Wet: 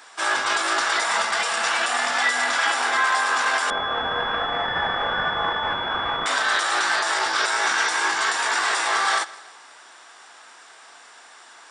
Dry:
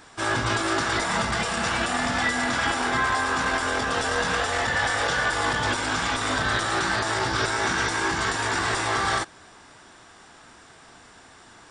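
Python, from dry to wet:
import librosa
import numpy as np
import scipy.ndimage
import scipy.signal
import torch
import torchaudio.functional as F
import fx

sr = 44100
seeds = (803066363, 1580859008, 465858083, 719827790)

y = scipy.signal.sosfilt(scipy.signal.butter(2, 690.0, 'highpass', fs=sr, output='sos'), x)
y = fx.echo_feedback(y, sr, ms=161, feedback_pct=39, wet_db=-20)
y = fx.pwm(y, sr, carrier_hz=3400.0, at=(3.7, 6.26))
y = y * librosa.db_to_amplitude(4.0)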